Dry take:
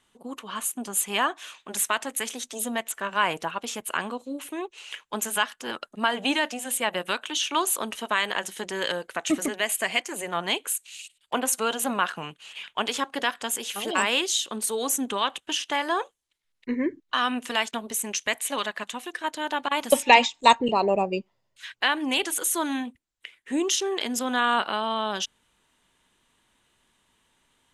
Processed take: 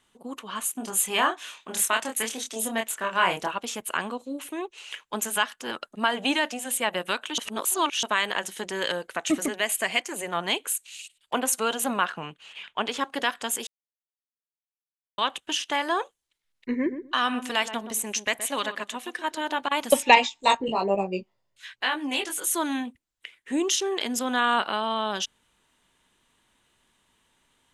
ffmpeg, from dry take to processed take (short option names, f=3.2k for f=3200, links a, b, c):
-filter_complex "[0:a]asettb=1/sr,asplit=3[a][b][c];[a]atrim=end=0.724[d];[b]atrim=start=0.72:end=3.58,asetpts=PTS-STARTPTS,afade=t=in:d=0.004:c=qsin,afade=t=out:st=2.856:d=0.004:c=qsin,asplit=2[e][f];[f]adelay=27,volume=-4dB[g];[e][g]amix=inputs=2:normalize=0,atrim=end_sample=126126[h];[c]atrim=start=3.576[i];[d][h]acrossfade=d=0.004:c1=hsin:c2=qsin[j];[j][i]acrossfade=d=0.004:c1=qsin:c2=hsin,asettb=1/sr,asplit=3[k][l][m];[k]atrim=end=12.054[n];[l]atrim=start=12.05:end=13.01,asetpts=PTS-STARTPTS,afade=t=in:d=0.004:c=qsin,afade=t=out:st=0.956:d=0.004:c=qsin,lowpass=f=3.4k:p=1[o];[m]atrim=start=13.006[p];[n][o]acrossfade=d=0.004:c1=hsin:c2=qsin[q];[q][p]acrossfade=d=0.004:c1=qsin:c2=hsin,asettb=1/sr,asplit=3[r][s][t];[r]atrim=end=16.744[u];[s]atrim=start=16.74:end=19.62,asetpts=PTS-STARTPTS,afade=t=in:d=0.004:c=qsin,afade=t=out:st=2.876:d=0.004:c=qsin,asplit=2[v][w];[w]adelay=123,lowpass=f=970:p=1,volume=-9dB,asplit=2[x][y];[y]adelay=123,lowpass=f=970:p=1,volume=0.19,asplit=2[z][aa];[aa]adelay=123,lowpass=f=970:p=1,volume=0.19[ab];[v][x][z][ab]amix=inputs=4:normalize=0,atrim=end_sample=127008[ac];[t]atrim=start=19.616[ad];[u][ac]acrossfade=d=0.004:c1=hsin:c2=qsin[ae];[ae][ad]acrossfade=d=0.004:c1=qsin:c2=hsin,asettb=1/sr,asplit=3[af][ag][ah];[af]atrim=end=20.154[ai];[ag]atrim=start=20.15:end=22.47,asetpts=PTS-STARTPTS,afade=t=in:d=0.004:c=qsin,afade=t=out:st=2.316:d=0.004:c=qsin,flanger=delay=15:depth=4.2:speed=1.2[aj];[ah]atrim=start=22.466[ak];[ai][aj]acrossfade=d=0.004:c1=hsin:c2=qsin[al];[al][ak]acrossfade=d=0.004:c1=qsin:c2=hsin,asplit=5[am][an][ao][ap][aq];[am]atrim=end=7.382[ar];[an]atrim=start=7.378:end=8.032,asetpts=PTS-STARTPTS,areverse[as];[ao]atrim=start=8.028:end=13.67,asetpts=PTS-STARTPTS,afade=t=out:st=5.638:d=0.004:c=hsin[at];[ap]atrim=start=13.67:end=15.18,asetpts=PTS-STARTPTS,volume=0[au];[aq]atrim=start=15.18,asetpts=PTS-STARTPTS,afade=t=in:d=0.004:c=hsin[av];[ar][as]acrossfade=d=0.004:c1=hsin:c2=hsin[aw];[at][au][av]concat=n=3:v=0:a=1[ax];[aw][ax]acrossfade=d=0.004:c1=hsin:c2=hsin"